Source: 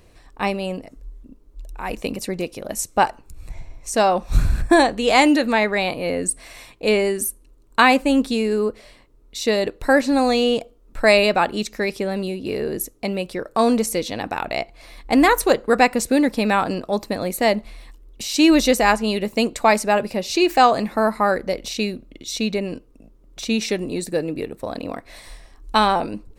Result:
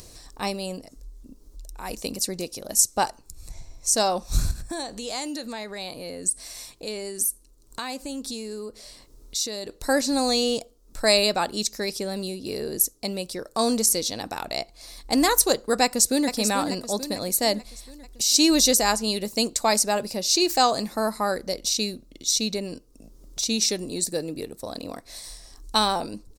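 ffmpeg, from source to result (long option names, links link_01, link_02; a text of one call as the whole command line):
ffmpeg -i in.wav -filter_complex "[0:a]asettb=1/sr,asplit=3[link_01][link_02][link_03];[link_01]atrim=end=4.514[link_04];[link_02]atrim=start=4.51:end=9.69,asetpts=PTS-STARTPTS,afade=type=in:duration=0.004:curve=qsin,afade=type=out:start_time=5.176:duration=0.004:curve=qsin,acompressor=threshold=-29dB:ratio=2.5:attack=3.2:release=140:knee=1:detection=peak[link_05];[link_03]atrim=start=9.686[link_06];[link_04][link_05]acrossfade=duration=0.004:curve1=hsin:curve2=qsin[link_07];[link_07][link_06]acrossfade=duration=0.004:curve1=qsin:curve2=hsin,asplit=2[link_08][link_09];[link_09]afade=type=in:start_time=15.83:duration=0.01,afade=type=out:start_time=16.3:duration=0.01,aecho=0:1:440|880|1320|1760|2200|2640:0.421697|0.210848|0.105424|0.0527121|0.026356|0.013178[link_10];[link_08][link_10]amix=inputs=2:normalize=0,highshelf=frequency=3600:width_type=q:width=1.5:gain=12,acompressor=mode=upward:threshold=-31dB:ratio=2.5,volume=-6dB" out.wav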